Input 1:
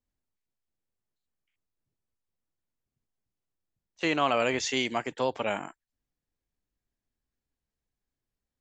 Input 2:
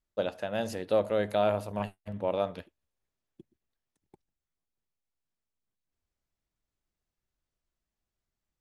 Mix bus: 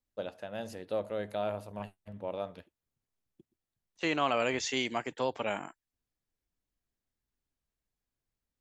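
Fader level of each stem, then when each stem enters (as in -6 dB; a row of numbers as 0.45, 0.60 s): -3.5, -7.5 dB; 0.00, 0.00 s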